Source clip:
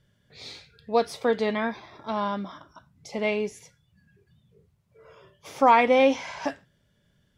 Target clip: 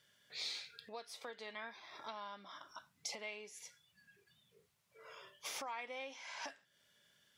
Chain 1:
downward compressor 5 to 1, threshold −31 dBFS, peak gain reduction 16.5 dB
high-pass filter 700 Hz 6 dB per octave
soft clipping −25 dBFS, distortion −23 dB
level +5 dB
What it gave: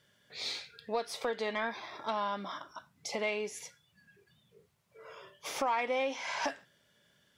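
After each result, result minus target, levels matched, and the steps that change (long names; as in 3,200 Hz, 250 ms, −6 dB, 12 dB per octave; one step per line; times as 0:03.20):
downward compressor: peak gain reduction −9 dB; 500 Hz band +4.5 dB
change: downward compressor 5 to 1, threshold −42.5 dBFS, peak gain reduction 25.5 dB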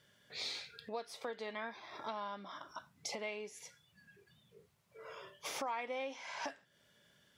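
500 Hz band +4.0 dB
change: high-pass filter 2,000 Hz 6 dB per octave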